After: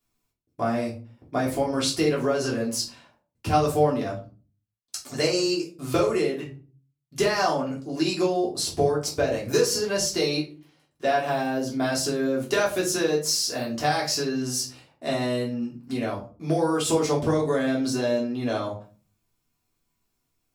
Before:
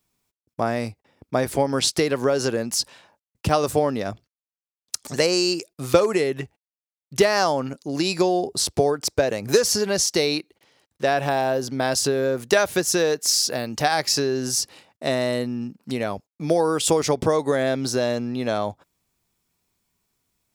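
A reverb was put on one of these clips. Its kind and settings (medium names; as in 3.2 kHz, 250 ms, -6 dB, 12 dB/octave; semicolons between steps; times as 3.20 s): simulated room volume 200 m³, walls furnished, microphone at 3.2 m; trim -9.5 dB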